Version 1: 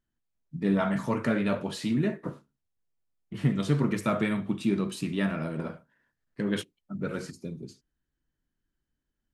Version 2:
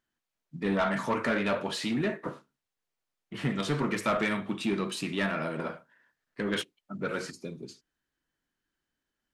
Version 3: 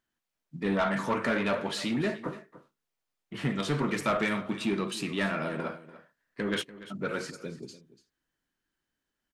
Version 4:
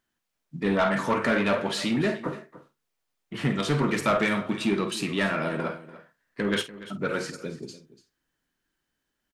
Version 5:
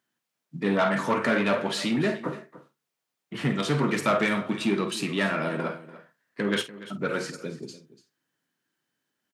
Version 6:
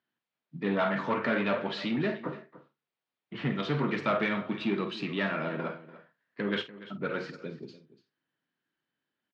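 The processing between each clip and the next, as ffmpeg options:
-filter_complex "[0:a]asplit=2[s0][s1];[s1]highpass=f=720:p=1,volume=7.94,asoftclip=type=tanh:threshold=0.266[s2];[s0][s2]amix=inputs=2:normalize=0,lowpass=f=4900:p=1,volume=0.501,volume=0.531"
-af "aecho=1:1:291:0.15"
-filter_complex "[0:a]asplit=2[s0][s1];[s1]adelay=49,volume=0.224[s2];[s0][s2]amix=inputs=2:normalize=0,volume=1.58"
-af "highpass=f=110:w=0.5412,highpass=f=110:w=1.3066"
-af "lowpass=f=4100:w=0.5412,lowpass=f=4100:w=1.3066,volume=0.596"

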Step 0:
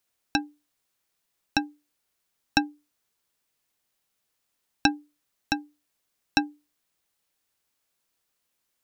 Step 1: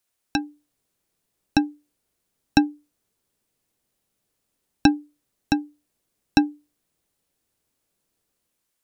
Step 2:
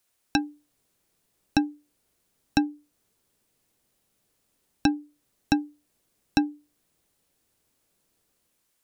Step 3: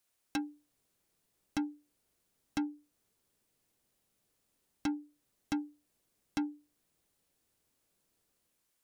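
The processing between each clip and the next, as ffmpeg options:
-filter_complex "[0:a]equalizer=f=9500:t=o:w=0.78:g=3.5,acrossover=split=560[s0][s1];[s0]dynaudnorm=f=100:g=9:m=3.35[s2];[s2][s1]amix=inputs=2:normalize=0,volume=0.891"
-af "alimiter=limit=0.266:level=0:latency=1:release=415,volume=1.58"
-af "asoftclip=type=tanh:threshold=0.075,volume=0.531"

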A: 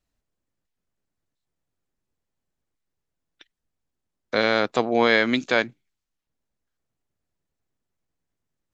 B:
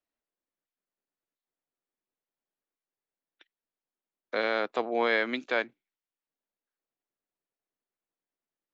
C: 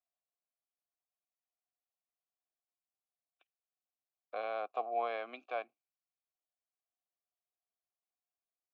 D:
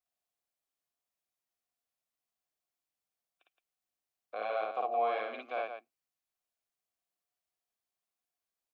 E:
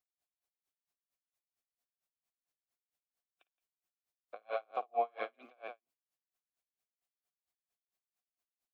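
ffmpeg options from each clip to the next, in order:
-filter_complex "[0:a]acrossover=split=250 3800:gain=0.1 1 0.224[s0][s1][s2];[s0][s1][s2]amix=inputs=3:normalize=0,volume=0.473"
-filter_complex "[0:a]asplit=3[s0][s1][s2];[s0]bandpass=f=730:t=q:w=8,volume=1[s3];[s1]bandpass=f=1090:t=q:w=8,volume=0.501[s4];[s2]bandpass=f=2440:t=q:w=8,volume=0.355[s5];[s3][s4][s5]amix=inputs=3:normalize=0,volume=1.12"
-af "aecho=1:1:55.39|169.1:1|0.447"
-af "aeval=exprs='val(0)*pow(10,-39*(0.5-0.5*cos(2*PI*4.4*n/s))/20)':c=same,volume=1.19"

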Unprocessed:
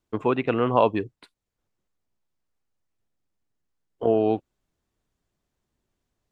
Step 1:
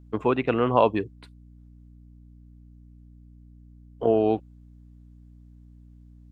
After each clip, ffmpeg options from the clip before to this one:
-af "aeval=exprs='val(0)+0.00398*(sin(2*PI*60*n/s)+sin(2*PI*2*60*n/s)/2+sin(2*PI*3*60*n/s)/3+sin(2*PI*4*60*n/s)/4+sin(2*PI*5*60*n/s)/5)':c=same"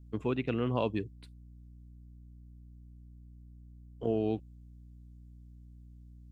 -af "equalizer=f=920:w=0.46:g=-14,volume=0.841"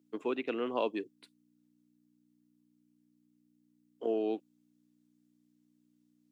-af "highpass=f=280:w=0.5412,highpass=f=280:w=1.3066"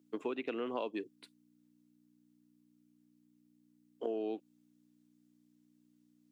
-af "acompressor=threshold=0.0178:ratio=6,volume=1.19"

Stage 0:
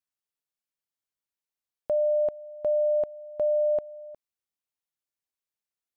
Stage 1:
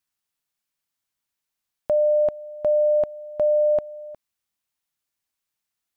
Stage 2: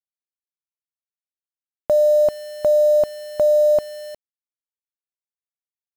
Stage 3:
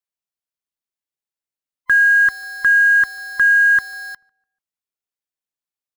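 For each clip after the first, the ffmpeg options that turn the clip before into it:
-af "equalizer=f=470:w=1.5:g=-5.5,volume=2.66"
-af "acrusher=bits=6:mix=0:aa=0.000001,volume=1.58"
-filter_complex "[0:a]afftfilt=real='real(if(lt(b,960),b+48*(1-2*mod(floor(b/48),2)),b),0)':imag='imag(if(lt(b,960),b+48*(1-2*mod(floor(b/48),2)),b),0)':win_size=2048:overlap=0.75,asplit=2[s0][s1];[s1]adelay=146,lowpass=f=1200:p=1,volume=0.0631,asplit=2[s2][s3];[s3]adelay=146,lowpass=f=1200:p=1,volume=0.46,asplit=2[s4][s5];[s5]adelay=146,lowpass=f=1200:p=1,volume=0.46[s6];[s0][s2][s4][s6]amix=inputs=4:normalize=0,volume=1.33"

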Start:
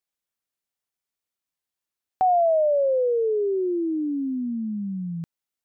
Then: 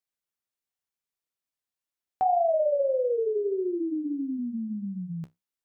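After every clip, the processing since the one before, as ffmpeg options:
-af "flanger=delay=6.1:depth=9.9:regen=-54:speed=1.6:shape=triangular"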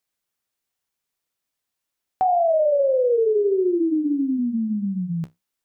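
-af "alimiter=limit=0.075:level=0:latency=1:release=40,volume=2.66"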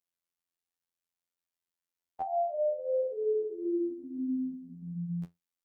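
-af "afftfilt=real='hypot(re,im)*cos(PI*b)':imag='0':win_size=2048:overlap=0.75,volume=0.398"

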